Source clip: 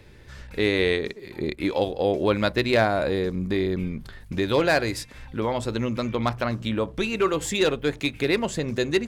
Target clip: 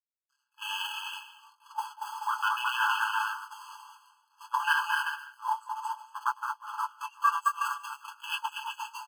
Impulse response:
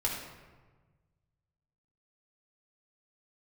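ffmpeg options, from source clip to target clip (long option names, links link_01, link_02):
-filter_complex "[0:a]afwtdn=0.0447,aeval=exprs='sgn(val(0))*max(abs(val(0))-0.00708,0)':channel_layout=same,asplit=2[link_01][link_02];[link_02]aecho=0:1:220|363|456|516.4|555.6:0.631|0.398|0.251|0.158|0.1[link_03];[link_01][link_03]amix=inputs=2:normalize=0,flanger=delay=18.5:depth=6.6:speed=0.61,agate=range=-17dB:threshold=-26dB:ratio=16:detection=peak,areverse,acompressor=mode=upward:threshold=-38dB:ratio=2.5,areverse,highpass=51,equalizer=frequency=1800:width=0.38:gain=-14,aecho=1:1:6.9:0.58,alimiter=level_in=24.5dB:limit=-1dB:release=50:level=0:latency=1,afftfilt=real='re*eq(mod(floor(b*sr/1024/850),2),1)':imag='im*eq(mod(floor(b*sr/1024/850),2),1)':win_size=1024:overlap=0.75,volume=-3dB"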